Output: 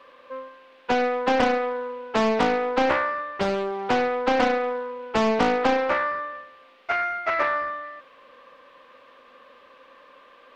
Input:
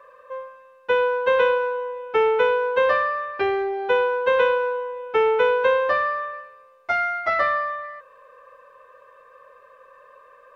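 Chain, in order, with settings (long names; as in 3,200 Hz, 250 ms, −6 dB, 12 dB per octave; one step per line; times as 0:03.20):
sub-octave generator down 1 octave, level −3 dB
noise in a band 230–3,200 Hz −56 dBFS
highs frequency-modulated by the lows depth 0.83 ms
level −2.5 dB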